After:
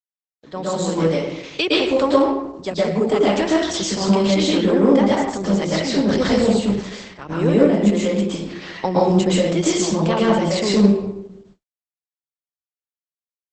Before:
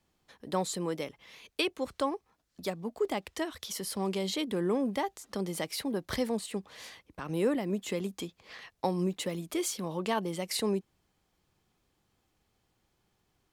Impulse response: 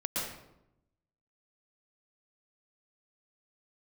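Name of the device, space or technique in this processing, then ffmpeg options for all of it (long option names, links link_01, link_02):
speakerphone in a meeting room: -filter_complex "[1:a]atrim=start_sample=2205[link_01];[0:a][link_01]afir=irnorm=-1:irlink=0,dynaudnorm=framelen=590:gausssize=3:maxgain=12dB,agate=range=-56dB:threshold=-48dB:ratio=16:detection=peak" -ar 48000 -c:a libopus -b:a 12k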